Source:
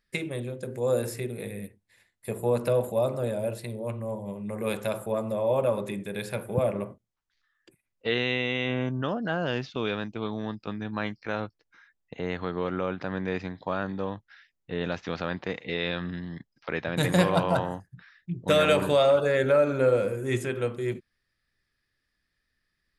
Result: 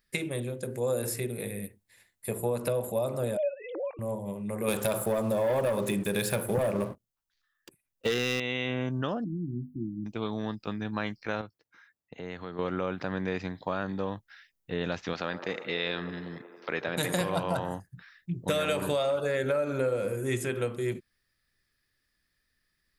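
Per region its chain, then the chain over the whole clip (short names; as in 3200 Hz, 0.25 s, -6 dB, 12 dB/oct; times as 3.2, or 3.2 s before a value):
3.37–3.99 sine-wave speech + backwards sustainer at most 60 dB/s
4.68–8.4 bell 2100 Hz -4.5 dB 0.21 oct + sample leveller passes 2
9.24–10.06 brick-wall FIR band-stop 360–9500 Hz + notches 50/100/150/200/250/300 Hz
11.41–12.59 HPF 70 Hz + compressor 1.5:1, threshold -48 dBFS + mismatched tape noise reduction decoder only
15.13–17.21 HPF 250 Hz 6 dB/oct + band-limited delay 93 ms, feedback 80%, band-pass 650 Hz, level -11 dB
whole clip: high shelf 8200 Hz +11 dB; compressor, threshold -25 dBFS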